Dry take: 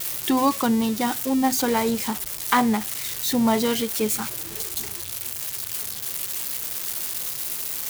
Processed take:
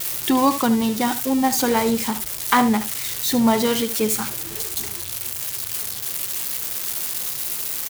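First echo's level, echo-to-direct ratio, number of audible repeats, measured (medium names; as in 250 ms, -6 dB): -13.0 dB, -13.0 dB, 1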